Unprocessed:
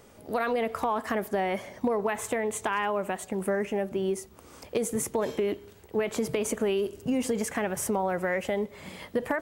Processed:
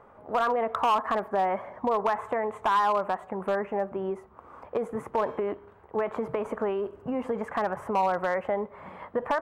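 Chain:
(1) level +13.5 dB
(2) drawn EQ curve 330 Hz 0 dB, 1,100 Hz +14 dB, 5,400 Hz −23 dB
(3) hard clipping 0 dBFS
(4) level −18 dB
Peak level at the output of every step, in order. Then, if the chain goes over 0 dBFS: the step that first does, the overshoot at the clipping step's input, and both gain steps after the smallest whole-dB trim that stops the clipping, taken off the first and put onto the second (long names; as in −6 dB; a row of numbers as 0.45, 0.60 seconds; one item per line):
−3.5, +6.5, 0.0, −18.0 dBFS
step 2, 6.5 dB
step 1 +6.5 dB, step 4 −11 dB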